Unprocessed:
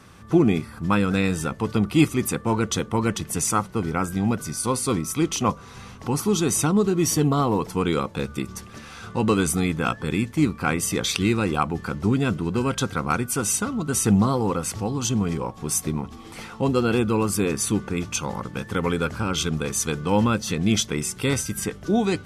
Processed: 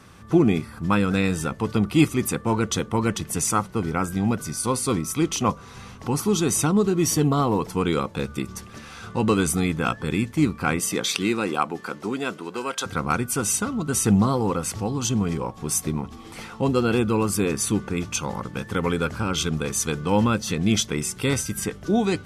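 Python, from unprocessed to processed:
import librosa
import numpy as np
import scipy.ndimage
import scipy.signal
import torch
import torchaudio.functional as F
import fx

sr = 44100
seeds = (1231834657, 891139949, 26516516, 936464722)

y = fx.highpass(x, sr, hz=fx.line((10.79, 160.0), (12.85, 550.0)), slope=12, at=(10.79, 12.85), fade=0.02)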